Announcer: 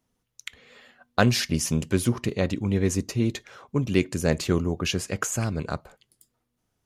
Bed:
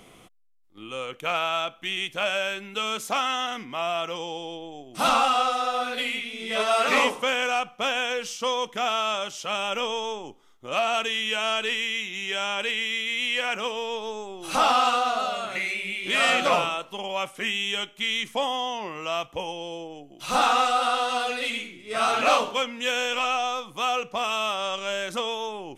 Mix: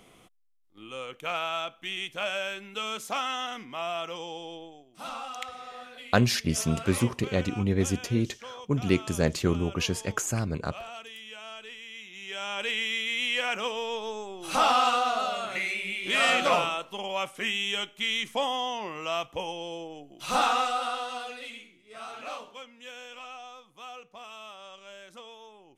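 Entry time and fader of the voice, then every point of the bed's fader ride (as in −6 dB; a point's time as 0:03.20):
4.95 s, −2.0 dB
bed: 0:04.62 −5 dB
0:04.96 −17 dB
0:11.80 −17 dB
0:12.74 −2 dB
0:20.29 −2 dB
0:22.05 −18 dB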